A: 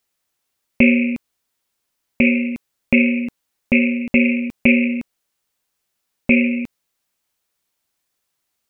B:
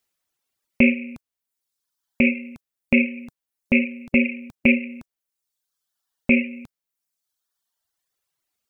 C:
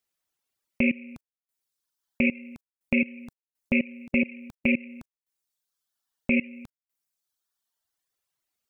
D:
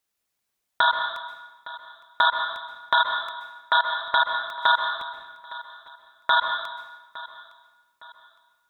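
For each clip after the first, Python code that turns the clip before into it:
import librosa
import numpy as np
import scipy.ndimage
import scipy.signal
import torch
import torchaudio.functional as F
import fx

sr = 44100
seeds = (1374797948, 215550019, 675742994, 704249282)

y1 = fx.dereverb_blind(x, sr, rt60_s=1.3)
y1 = F.gain(torch.from_numpy(y1), -2.5).numpy()
y2 = fx.level_steps(y1, sr, step_db=21)
y3 = y2 * np.sin(2.0 * np.pi * 1200.0 * np.arange(len(y2)) / sr)
y3 = fx.echo_feedback(y3, sr, ms=861, feedback_pct=38, wet_db=-18)
y3 = fx.rev_plate(y3, sr, seeds[0], rt60_s=1.1, hf_ratio=0.9, predelay_ms=115, drr_db=4.5)
y3 = F.gain(torch.from_numpy(y3), 6.0).numpy()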